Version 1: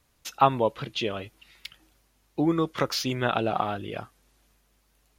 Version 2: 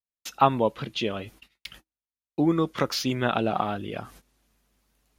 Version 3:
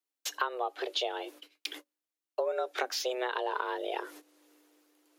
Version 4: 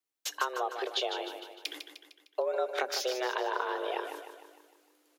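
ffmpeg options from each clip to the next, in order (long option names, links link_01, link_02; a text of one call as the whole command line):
ffmpeg -i in.wav -af "agate=range=-41dB:threshold=-52dB:ratio=16:detection=peak,equalizer=frequency=220:width_type=o:width=0.74:gain=4.5,areverse,acompressor=mode=upward:threshold=-40dB:ratio=2.5,areverse" out.wav
ffmpeg -i in.wav -af "tremolo=f=1.1:d=0.37,acompressor=threshold=-33dB:ratio=10,afreqshift=250,volume=4.5dB" out.wav
ffmpeg -i in.wav -af "aecho=1:1:152|304|456|608|760|912:0.398|0.199|0.0995|0.0498|0.0249|0.0124" out.wav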